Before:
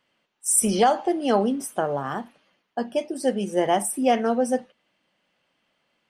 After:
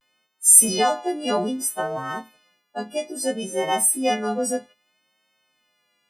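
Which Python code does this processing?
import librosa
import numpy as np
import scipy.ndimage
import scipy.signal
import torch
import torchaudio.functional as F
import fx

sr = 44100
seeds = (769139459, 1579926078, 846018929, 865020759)

y = fx.freq_snap(x, sr, grid_st=3)
y = fx.vibrato(y, sr, rate_hz=0.62, depth_cents=61.0)
y = y * librosa.db_to_amplitude(-2.5)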